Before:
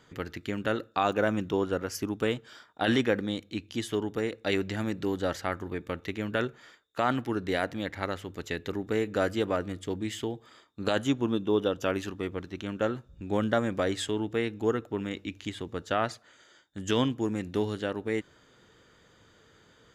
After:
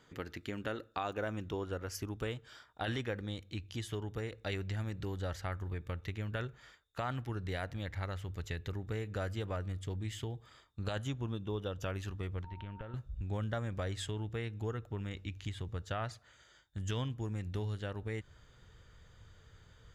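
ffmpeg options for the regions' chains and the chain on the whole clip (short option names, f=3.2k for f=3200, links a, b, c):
-filter_complex "[0:a]asettb=1/sr,asplit=3[a][b][c];[a]atrim=end=12.444[d];[b]atrim=start=12.44:end=12.94,asetpts=PTS-STARTPTS,afade=t=in:d=0.004:c=qsin,afade=t=out:st=0.496:d=0.004:c=qsin,lowpass=f=3.4k:w=0.5412,lowpass=f=3.4k:w=1.3066,aeval=exprs='val(0)+0.00891*sin(2*PI*920*n/s)':c=same,acompressor=threshold=-39dB:ratio=4:attack=3.2:release=140:knee=1:detection=peak[e];[c]atrim=start=12.936[f];[d][e]acrossfade=d=0.004:c1=hsin:c2=qsin[g];[g][f]acrossfade=d=0.004:c1=qsin:c2=hsin,asubboost=boost=12:cutoff=78,acompressor=threshold=-33dB:ratio=2,volume=-4.5dB"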